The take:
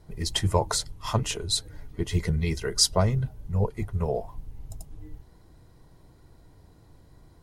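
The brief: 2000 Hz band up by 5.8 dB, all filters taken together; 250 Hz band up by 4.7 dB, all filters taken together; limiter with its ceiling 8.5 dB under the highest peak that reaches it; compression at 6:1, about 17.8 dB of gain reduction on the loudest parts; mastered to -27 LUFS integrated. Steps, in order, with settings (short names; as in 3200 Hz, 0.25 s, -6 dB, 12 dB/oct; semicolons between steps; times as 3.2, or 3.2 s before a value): bell 250 Hz +7.5 dB; bell 2000 Hz +7 dB; compressor 6:1, threshold -36 dBFS; gain +15.5 dB; limiter -15.5 dBFS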